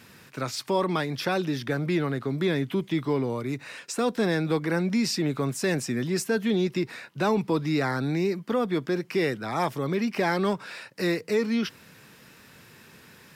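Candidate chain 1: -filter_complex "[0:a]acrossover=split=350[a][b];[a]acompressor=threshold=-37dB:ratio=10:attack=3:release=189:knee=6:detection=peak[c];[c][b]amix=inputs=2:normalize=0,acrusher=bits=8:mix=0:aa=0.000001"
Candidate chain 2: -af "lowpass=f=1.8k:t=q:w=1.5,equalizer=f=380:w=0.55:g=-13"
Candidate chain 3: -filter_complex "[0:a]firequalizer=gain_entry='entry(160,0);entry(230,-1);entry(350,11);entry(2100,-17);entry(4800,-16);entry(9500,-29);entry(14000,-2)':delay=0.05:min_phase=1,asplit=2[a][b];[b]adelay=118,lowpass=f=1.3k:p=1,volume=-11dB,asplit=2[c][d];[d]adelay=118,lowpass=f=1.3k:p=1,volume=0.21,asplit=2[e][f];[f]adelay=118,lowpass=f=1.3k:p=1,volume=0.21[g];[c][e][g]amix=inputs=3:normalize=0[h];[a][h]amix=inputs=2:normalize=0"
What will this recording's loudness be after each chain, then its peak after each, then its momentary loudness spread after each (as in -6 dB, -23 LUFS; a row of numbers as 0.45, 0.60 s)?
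-30.5, -34.0, -20.0 LUFS; -14.0, -14.5, -7.0 dBFS; 17, 8, 7 LU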